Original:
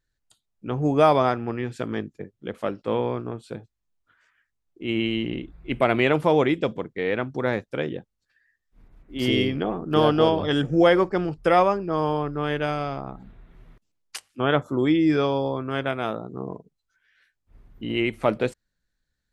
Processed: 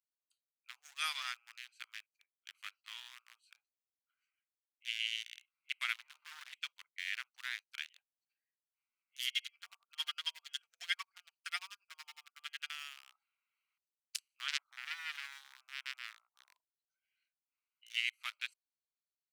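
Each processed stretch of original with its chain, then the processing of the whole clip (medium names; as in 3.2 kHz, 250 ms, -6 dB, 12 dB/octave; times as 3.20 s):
5.96–6.53 s: CVSD coder 32 kbps + low-pass 1.5 kHz + transformer saturation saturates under 520 Hz
9.28–12.70 s: resonant low shelf 280 Hz -7 dB, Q 1.5 + comb 4.3 ms + logarithmic tremolo 11 Hz, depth 22 dB
14.48–16.48 s: high-pass 100 Hz 24 dB/octave + distance through air 350 m + transformer saturation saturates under 2.3 kHz
whole clip: local Wiener filter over 25 samples; Bessel high-pass 2.8 kHz, order 6; treble shelf 7 kHz +9 dB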